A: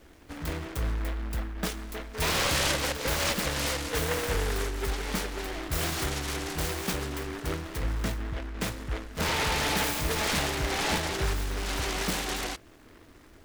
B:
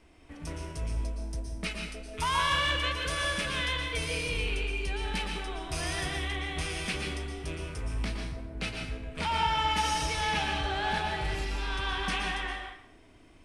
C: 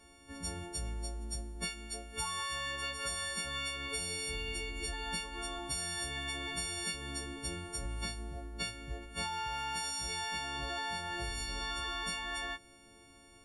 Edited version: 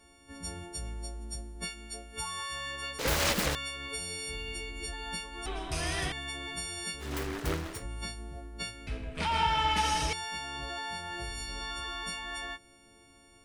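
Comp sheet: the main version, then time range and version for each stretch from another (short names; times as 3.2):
C
2.99–3.55 from A
5.46–6.12 from B
7.06–7.76 from A, crossfade 0.16 s
8.87–10.13 from B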